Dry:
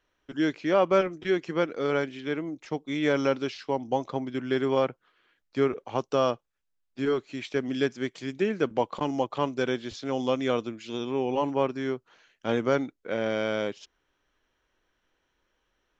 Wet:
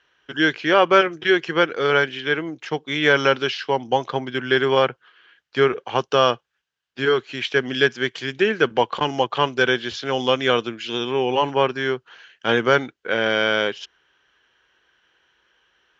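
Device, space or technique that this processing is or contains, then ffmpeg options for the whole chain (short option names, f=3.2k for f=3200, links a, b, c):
car door speaker: -af "highpass=92,equalizer=f=96:t=q:w=4:g=-8,equalizer=f=190:t=q:w=4:g=-8,equalizer=f=280:t=q:w=4:g=-9,equalizer=f=600:t=q:w=4:g=-5,equalizer=f=1.6k:t=q:w=4:g=8,equalizer=f=3k:t=q:w=4:g=8,lowpass=f=6.5k:w=0.5412,lowpass=f=6.5k:w=1.3066,volume=9dB"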